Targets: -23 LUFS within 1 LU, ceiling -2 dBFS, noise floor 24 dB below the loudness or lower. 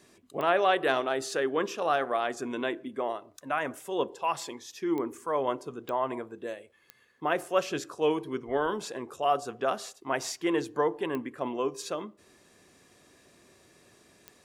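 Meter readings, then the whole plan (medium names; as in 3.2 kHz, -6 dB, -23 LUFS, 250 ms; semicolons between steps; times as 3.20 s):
clicks found 6; loudness -30.5 LUFS; peak level -11.0 dBFS; loudness target -23.0 LUFS
-> de-click; trim +7.5 dB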